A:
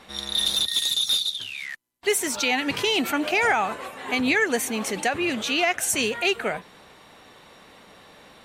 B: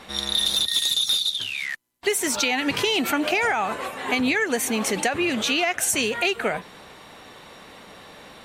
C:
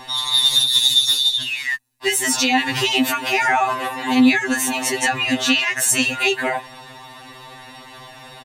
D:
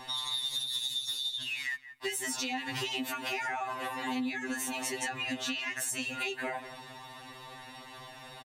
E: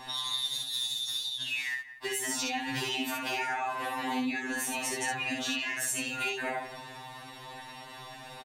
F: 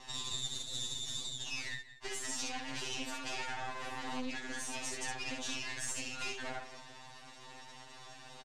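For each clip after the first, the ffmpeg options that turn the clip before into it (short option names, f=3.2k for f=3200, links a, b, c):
-af "acompressor=threshold=-24dB:ratio=6,volume=5dB"
-af "aecho=1:1:1.1:0.44,afftfilt=real='re*2.45*eq(mod(b,6),0)':imag='im*2.45*eq(mod(b,6),0)':win_size=2048:overlap=0.75,volume=6.5dB"
-filter_complex "[0:a]asplit=2[a][b];[b]adelay=175,lowpass=f=1.9k:p=1,volume=-16dB,asplit=2[c][d];[d]adelay=175,lowpass=f=1.9k:p=1,volume=0.27,asplit=2[e][f];[f]adelay=175,lowpass=f=1.9k:p=1,volume=0.27[g];[a][c][e][g]amix=inputs=4:normalize=0,acompressor=threshold=-24dB:ratio=6,volume=-8dB"
-af "aecho=1:1:22|63:0.501|0.668"
-af "aeval=exprs='max(val(0),0)':c=same,lowpass=f=7.1k:t=q:w=1.7,volume=-4dB"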